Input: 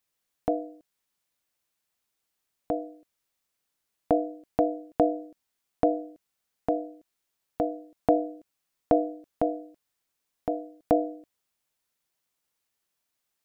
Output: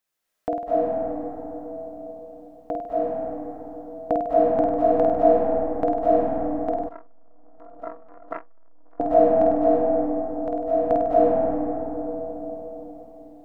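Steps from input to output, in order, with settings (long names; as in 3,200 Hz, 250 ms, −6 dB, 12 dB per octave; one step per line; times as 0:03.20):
graphic EQ with 15 bands 100 Hz −7 dB, 630 Hz +4 dB, 1,600 Hz +4 dB
flutter between parallel walls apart 8.6 metres, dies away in 0.77 s
convolution reverb RT60 4.4 s, pre-delay 181 ms, DRR −6.5 dB
0:06.87–0:09.00: saturating transformer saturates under 760 Hz
level −2.5 dB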